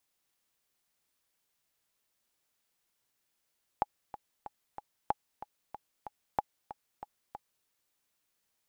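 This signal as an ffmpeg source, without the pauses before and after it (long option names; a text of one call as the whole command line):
ffmpeg -f lavfi -i "aevalsrc='pow(10,(-14-14.5*gte(mod(t,4*60/187),60/187))/20)*sin(2*PI*835*mod(t,60/187))*exp(-6.91*mod(t,60/187)/0.03)':duration=3.85:sample_rate=44100" out.wav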